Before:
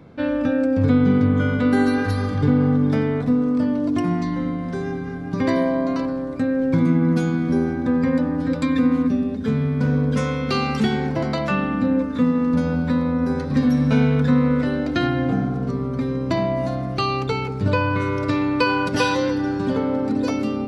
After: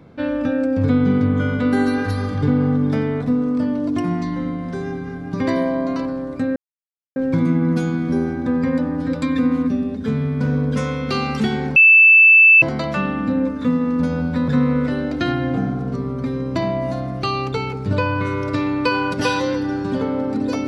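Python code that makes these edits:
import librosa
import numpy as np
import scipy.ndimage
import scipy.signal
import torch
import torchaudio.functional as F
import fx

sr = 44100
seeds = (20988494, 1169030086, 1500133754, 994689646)

y = fx.edit(x, sr, fx.insert_silence(at_s=6.56, length_s=0.6),
    fx.insert_tone(at_s=11.16, length_s=0.86, hz=2640.0, db=-6.0),
    fx.cut(start_s=13.02, length_s=1.21), tone=tone)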